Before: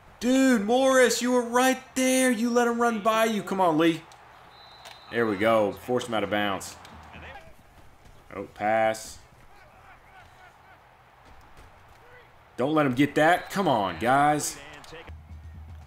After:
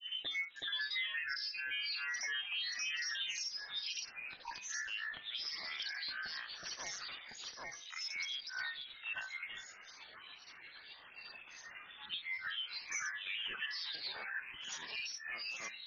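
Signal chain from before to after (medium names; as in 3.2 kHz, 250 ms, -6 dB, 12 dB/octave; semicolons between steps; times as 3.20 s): random holes in the spectrogram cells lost 29%; gate -46 dBFS, range -6 dB; compression, threshold -31 dBFS, peak gain reduction 15 dB; peak limiter -29 dBFS, peak gain reduction 9.5 dB; low-pass that closes with the level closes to 900 Hz, closed at -35 dBFS; feedback echo behind a low-pass 162 ms, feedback 51%, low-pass 510 Hz, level -9 dB; frequency inversion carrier 3.5 kHz; granulator 258 ms, grains 15 per s, spray 763 ms, pitch spread up and down by 12 st; de-hum 99.19 Hz, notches 27; three bands compressed up and down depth 40%; trim +3 dB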